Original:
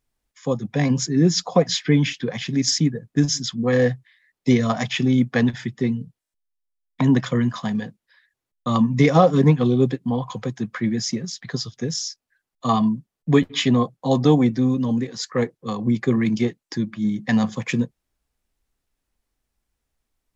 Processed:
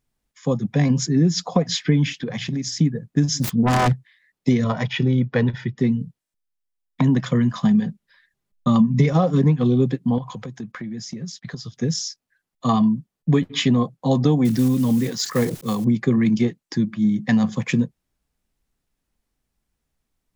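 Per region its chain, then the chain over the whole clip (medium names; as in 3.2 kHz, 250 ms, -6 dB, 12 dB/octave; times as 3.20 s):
2.22–2.79 s: hum notches 60/120/180 Hz + compression, threshold -25 dBFS
3.40–3.93 s: self-modulated delay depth 1 ms + bass shelf 330 Hz +8 dB
4.64–5.78 s: distance through air 160 m + comb 2.1 ms, depth 47%
7.61–9.13 s: bass shelf 160 Hz +9.5 dB + comb 5 ms, depth 49%
10.18–11.71 s: gate -43 dBFS, range -16 dB + compression 12:1, threshold -31 dBFS
14.45–15.86 s: block-companded coder 5-bit + treble shelf 4.9 kHz +7.5 dB + decay stretcher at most 110 dB/s
whole clip: peaking EQ 170 Hz +6.5 dB 1.2 oct; compression 4:1, threshold -14 dBFS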